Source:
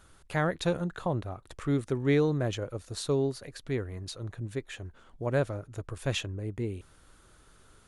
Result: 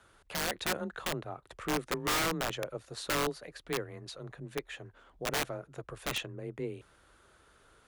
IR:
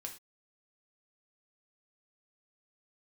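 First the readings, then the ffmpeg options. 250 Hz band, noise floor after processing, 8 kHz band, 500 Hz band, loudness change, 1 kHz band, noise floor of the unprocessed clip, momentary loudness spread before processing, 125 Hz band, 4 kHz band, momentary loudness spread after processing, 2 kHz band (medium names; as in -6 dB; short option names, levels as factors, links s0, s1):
-8.0 dB, -64 dBFS, +5.5 dB, -6.5 dB, -3.5 dB, +2.0 dB, -59 dBFS, 13 LU, -12.0 dB, +3.5 dB, 14 LU, +2.0 dB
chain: -af "bass=f=250:g=-10,treble=f=4000:g=-7,afreqshift=23,aeval=exprs='(mod(17.8*val(0)+1,2)-1)/17.8':c=same"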